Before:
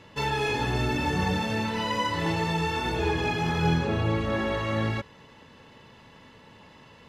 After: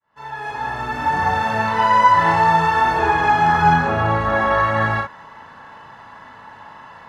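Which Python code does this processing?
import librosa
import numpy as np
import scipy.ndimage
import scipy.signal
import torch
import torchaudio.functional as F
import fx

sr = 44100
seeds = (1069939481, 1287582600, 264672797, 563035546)

y = fx.fade_in_head(x, sr, length_s=1.74)
y = fx.band_shelf(y, sr, hz=1100.0, db=14.5, octaves=1.7)
y = fx.room_early_taps(y, sr, ms=(36, 56), db=(-5.5, -6.0))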